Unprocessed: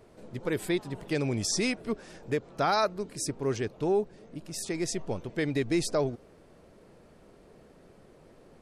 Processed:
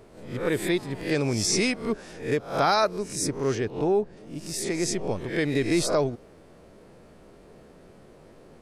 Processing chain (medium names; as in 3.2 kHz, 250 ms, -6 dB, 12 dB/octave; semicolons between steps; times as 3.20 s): reverse spectral sustain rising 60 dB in 0.43 s; 3.55–4.17 s: treble shelf 4.5 kHz -8.5 dB; trim +3 dB